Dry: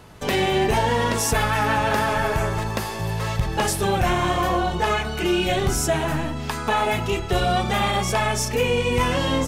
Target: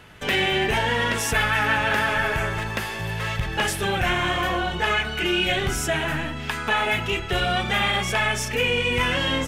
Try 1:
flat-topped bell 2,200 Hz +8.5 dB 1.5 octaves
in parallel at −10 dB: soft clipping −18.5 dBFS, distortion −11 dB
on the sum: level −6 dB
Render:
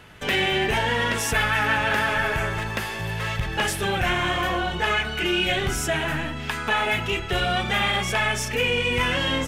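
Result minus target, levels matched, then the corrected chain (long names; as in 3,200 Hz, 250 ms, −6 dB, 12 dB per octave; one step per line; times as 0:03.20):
soft clipping: distortion +7 dB
flat-topped bell 2,200 Hz +8.5 dB 1.5 octaves
in parallel at −10 dB: soft clipping −12.5 dBFS, distortion −17 dB
on the sum: level −6 dB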